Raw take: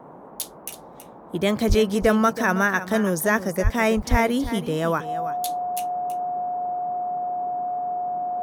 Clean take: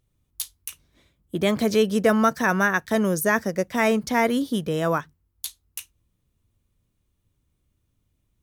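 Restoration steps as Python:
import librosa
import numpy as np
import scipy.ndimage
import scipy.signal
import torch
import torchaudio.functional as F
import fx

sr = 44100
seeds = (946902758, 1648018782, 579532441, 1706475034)

y = fx.notch(x, sr, hz=720.0, q=30.0)
y = fx.fix_deplosive(y, sr, at_s=(1.68, 3.63, 4.1))
y = fx.noise_reduce(y, sr, print_start_s=0.8, print_end_s=1.3, reduce_db=29.0)
y = fx.fix_echo_inverse(y, sr, delay_ms=325, level_db=-12.5)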